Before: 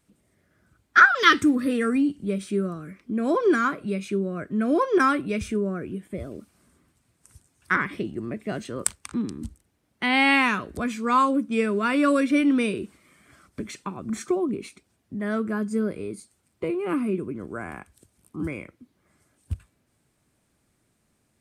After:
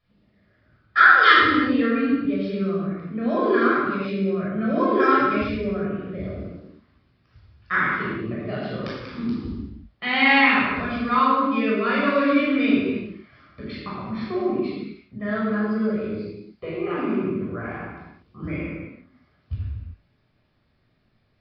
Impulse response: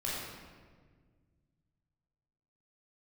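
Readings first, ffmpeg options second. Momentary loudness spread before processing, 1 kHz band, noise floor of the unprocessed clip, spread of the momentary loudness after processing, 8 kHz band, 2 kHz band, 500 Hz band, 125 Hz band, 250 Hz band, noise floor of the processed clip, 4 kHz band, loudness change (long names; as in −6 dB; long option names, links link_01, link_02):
18 LU, +3.5 dB, −71 dBFS, 19 LU, below −25 dB, +3.5 dB, +2.0 dB, +4.0 dB, +1.5 dB, −66 dBFS, +3.0 dB, +2.5 dB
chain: -filter_complex "[0:a]equalizer=frequency=240:width_type=o:width=2.5:gain=-3.5[link_01];[1:a]atrim=start_sample=2205,afade=type=out:start_time=0.45:duration=0.01,atrim=end_sample=20286[link_02];[link_01][link_02]afir=irnorm=-1:irlink=0,aresample=11025,aresample=44100,volume=-1dB"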